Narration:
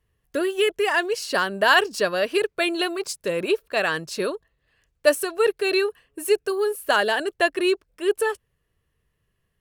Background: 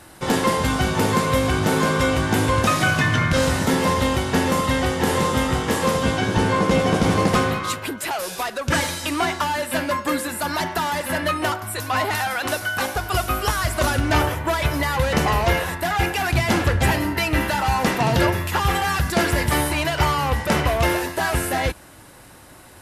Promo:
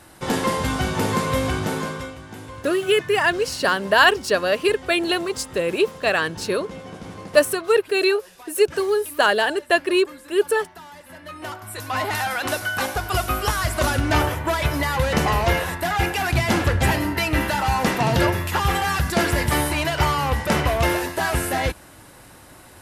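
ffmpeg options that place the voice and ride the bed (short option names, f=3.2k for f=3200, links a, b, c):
-filter_complex "[0:a]adelay=2300,volume=2.5dB[a];[1:a]volume=15.5dB,afade=t=out:st=1.47:d=0.68:silence=0.158489,afade=t=in:st=11.23:d=1.03:silence=0.125893[b];[a][b]amix=inputs=2:normalize=0"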